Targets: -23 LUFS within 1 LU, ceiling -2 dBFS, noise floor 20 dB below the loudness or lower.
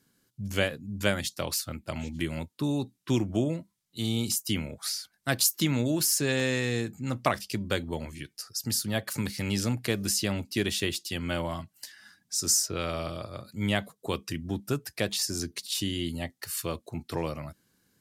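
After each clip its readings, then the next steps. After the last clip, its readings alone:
dropouts 2; longest dropout 1.4 ms; loudness -30.0 LUFS; peak level -7.5 dBFS; loudness target -23.0 LUFS
-> interpolate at 4.32/6.40 s, 1.4 ms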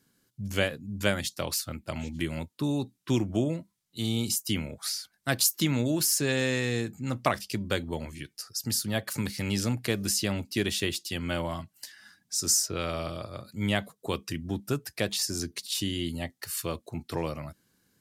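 dropouts 0; loudness -30.0 LUFS; peak level -7.5 dBFS; loudness target -23.0 LUFS
-> trim +7 dB; peak limiter -2 dBFS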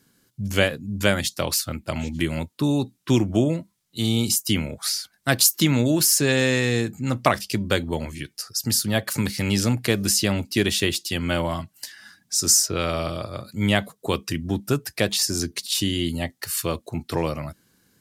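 loudness -23.0 LUFS; peak level -2.0 dBFS; noise floor -67 dBFS

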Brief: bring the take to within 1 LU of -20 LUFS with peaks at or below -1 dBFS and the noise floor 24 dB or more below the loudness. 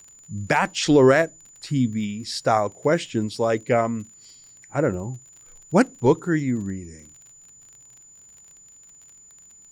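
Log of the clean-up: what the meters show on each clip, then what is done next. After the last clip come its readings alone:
tick rate 38 per s; steady tone 7 kHz; tone level -47 dBFS; loudness -22.0 LUFS; peak level -6.5 dBFS; loudness target -20.0 LUFS
-> de-click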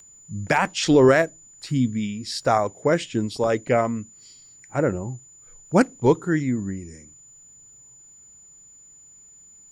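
tick rate 0.10 per s; steady tone 7 kHz; tone level -47 dBFS
-> band-stop 7 kHz, Q 30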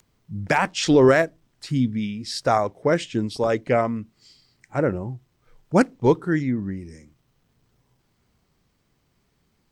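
steady tone not found; loudness -22.5 LUFS; peak level -6.5 dBFS; loudness target -20.0 LUFS
-> trim +2.5 dB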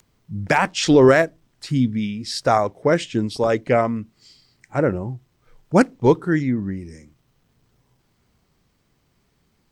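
loudness -20.0 LUFS; peak level -4.0 dBFS; noise floor -66 dBFS

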